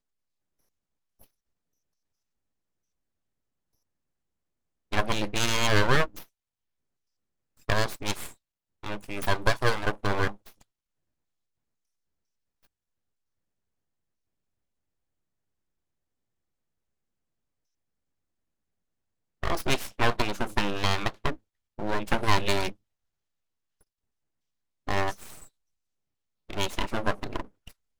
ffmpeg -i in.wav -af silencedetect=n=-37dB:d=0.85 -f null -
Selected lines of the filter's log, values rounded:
silence_start: 0.00
silence_end: 4.92 | silence_duration: 4.92
silence_start: 6.23
silence_end: 7.69 | silence_duration: 1.46
silence_start: 10.48
silence_end: 19.43 | silence_duration: 8.95
silence_start: 22.72
silence_end: 24.88 | silence_duration: 2.16
silence_start: 25.43
silence_end: 26.50 | silence_duration: 1.07